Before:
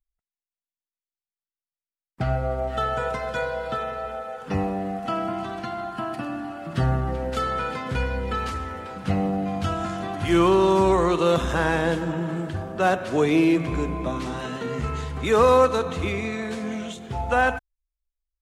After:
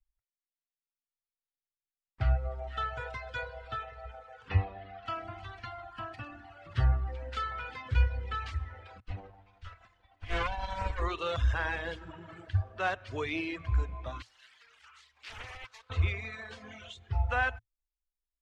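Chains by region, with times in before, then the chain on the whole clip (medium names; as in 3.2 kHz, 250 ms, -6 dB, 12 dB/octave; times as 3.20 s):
4.49–5.06 s: low-pass 4 kHz 24 dB/octave + treble shelf 2.4 kHz +7.5 dB
9.00–11.02 s: comb filter that takes the minimum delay 4 ms + upward expansion 2.5:1, over -36 dBFS
14.22–15.90 s: differentiator + careless resampling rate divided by 3×, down none, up hold + loudspeaker Doppler distortion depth 0.94 ms
whole clip: low-pass 4 kHz 12 dB/octave; reverb removal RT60 1.6 s; FFT filter 110 Hz 0 dB, 150 Hz -26 dB, 1.9 kHz -8 dB; trim +4 dB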